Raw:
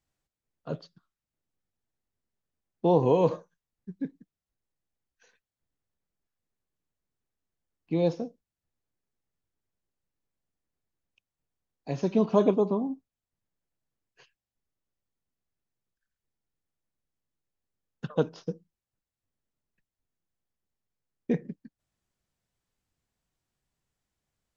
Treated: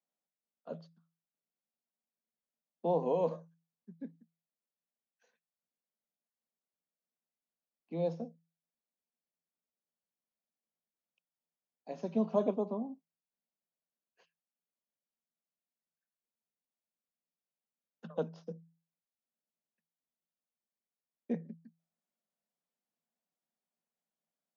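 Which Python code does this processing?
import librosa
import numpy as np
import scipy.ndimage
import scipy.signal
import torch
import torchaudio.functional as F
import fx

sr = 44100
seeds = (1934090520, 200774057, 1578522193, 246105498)

y = scipy.signal.sosfilt(scipy.signal.cheby1(6, 9, 160.0, 'highpass', fs=sr, output='sos'), x)
y = F.gain(torch.from_numpy(y), -4.5).numpy()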